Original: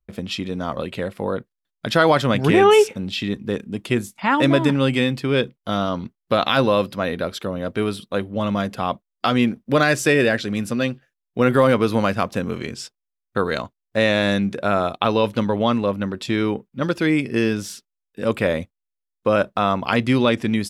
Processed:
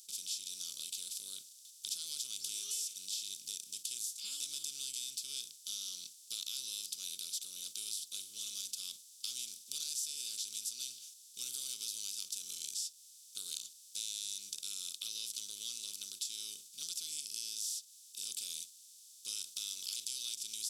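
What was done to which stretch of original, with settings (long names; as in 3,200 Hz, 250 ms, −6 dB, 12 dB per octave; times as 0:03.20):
0:19.27–0:20.34: ceiling on every frequency bin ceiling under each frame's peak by 14 dB
whole clip: compressor on every frequency bin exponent 0.4; inverse Chebyshev high-pass filter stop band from 2,000 Hz, stop band 50 dB; downward compressor 3 to 1, threshold −35 dBFS; level −2.5 dB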